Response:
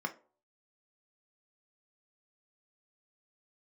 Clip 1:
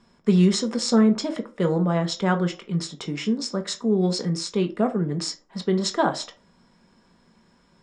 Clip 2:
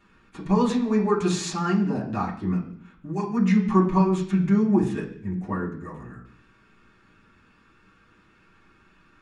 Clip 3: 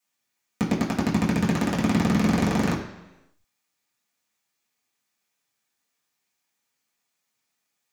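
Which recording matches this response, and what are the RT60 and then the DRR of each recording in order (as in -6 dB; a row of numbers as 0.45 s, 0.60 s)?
1; 0.45 s, 0.60 s, 1.0 s; 5.0 dB, -6.5 dB, -7.0 dB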